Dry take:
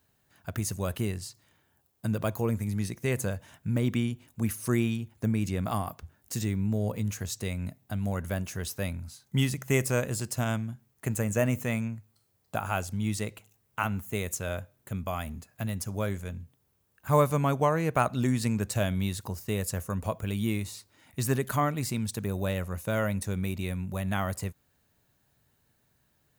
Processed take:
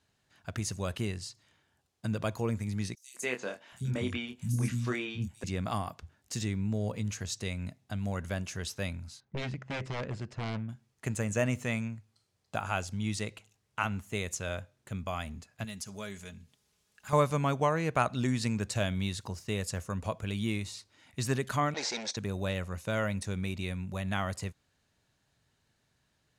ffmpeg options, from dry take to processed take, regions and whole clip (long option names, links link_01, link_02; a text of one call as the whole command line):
ffmpeg -i in.wav -filter_complex "[0:a]asettb=1/sr,asplit=3[link_01][link_02][link_03];[link_01]atrim=end=2.954[link_04];[link_02]atrim=start=2.95:end=5.44,asetpts=PTS-STARTPTS,afade=type=in:duration=0.004:curve=qsin,afade=type=out:start_time=2.486:duration=0.004:curve=qsin,asplit=2[link_05][link_06];[link_06]adelay=24,volume=-5dB[link_07];[link_05][link_07]amix=inputs=2:normalize=0,atrim=end_sample=109809,acrossover=split=240|5000[link_08][link_09][link_10];[link_09]adelay=190[link_11];[link_08]adelay=770[link_12];[link_12][link_11][link_10]amix=inputs=3:normalize=0,atrim=end_sample=109809[link_13];[link_03]atrim=start=5.436[link_14];[link_04][link_13]acrossfade=duration=0.004:curve1=hsin:curve2=qsin[link_15];[link_15][link_14]acrossfade=duration=0.004:curve1=qsin:curve2=hsin,asettb=1/sr,asplit=3[link_16][link_17][link_18];[link_16]atrim=end=9.204[link_19];[link_17]atrim=start=9.2:end=10.69,asetpts=PTS-STARTPTS,afade=type=in:duration=0.004:curve=qsin,afade=type=out:start_time=1.486:duration=0.004:curve=qsin,aeval=exprs='0.0501*(abs(mod(val(0)/0.0501+3,4)-2)-1)':channel_layout=same,adynamicsmooth=sensitivity=2.5:basefreq=1800[link_20];[link_18]atrim=start=10.686[link_21];[link_19][link_20]acrossfade=duration=0.004:curve1=hsin:curve2=qsin[link_22];[link_22][link_21]acrossfade=duration=0.004:curve1=qsin:curve2=hsin,asettb=1/sr,asplit=3[link_23][link_24][link_25];[link_23]atrim=end=15.644[link_26];[link_24]atrim=start=15.64:end=17.13,asetpts=PTS-STARTPTS,afade=type=in:duration=0.004:curve=qsin,afade=type=out:start_time=1.486:duration=0.004:curve=qsin,highshelf=frequency=2200:gain=9.5,acompressor=threshold=-48dB:ratio=1.5:attack=3.2:release=140:knee=1:detection=peak,aecho=1:1:4.8:0.49,atrim=end_sample=65709[link_27];[link_25]atrim=start=17.126[link_28];[link_26][link_27]acrossfade=duration=0.004:curve1=hsin:curve2=qsin[link_29];[link_29][link_28]acrossfade=duration=0.004:curve1=qsin:curve2=hsin,asettb=1/sr,asplit=3[link_30][link_31][link_32];[link_30]atrim=end=21.744[link_33];[link_31]atrim=start=21.74:end=22.17,asetpts=PTS-STARTPTS,afade=type=in:duration=0.004:curve=qsin,afade=type=out:start_time=0.426:duration=0.004:curve=qsin,agate=range=-33dB:threshold=-34dB:ratio=3:release=100:detection=peak,asplit=2[link_34][link_35];[link_35]highpass=frequency=720:poles=1,volume=26dB,asoftclip=type=tanh:threshold=-20.5dB[link_36];[link_34][link_36]amix=inputs=2:normalize=0,lowpass=frequency=2300:poles=1,volume=-6dB,highpass=460,equalizer=frequency=520:width_type=q:width=4:gain=6,equalizer=frequency=780:width_type=q:width=4:gain=3,equalizer=frequency=1200:width_type=q:width=4:gain=-9,equalizer=frequency=2900:width_type=q:width=4:gain=-7,equalizer=frequency=4000:width_type=q:width=4:gain=3,equalizer=frequency=5900:width_type=q:width=4:gain=9,lowpass=frequency=7600:width=0.5412,lowpass=frequency=7600:width=1.3066[link_37];[link_32]atrim=start=22.166[link_38];[link_33][link_37]acrossfade=duration=0.004:curve1=hsin:curve2=qsin[link_39];[link_39][link_38]acrossfade=duration=0.004:curve1=qsin:curve2=hsin,lowpass=5800,highshelf=frequency=2400:gain=8,volume=-3.5dB" out.wav